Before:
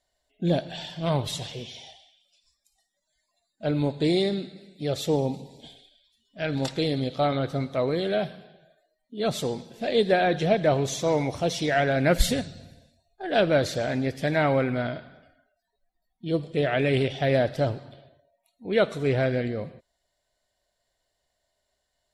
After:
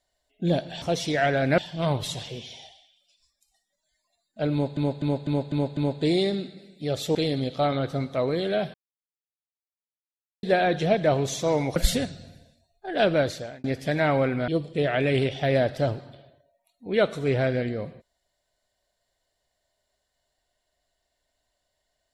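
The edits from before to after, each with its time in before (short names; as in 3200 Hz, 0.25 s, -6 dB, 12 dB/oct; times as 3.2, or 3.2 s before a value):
3.76–4.01 loop, 6 plays
5.14–6.75 cut
8.34–10.03 mute
11.36–12.12 move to 0.82
13.5–14 fade out
14.84–16.27 cut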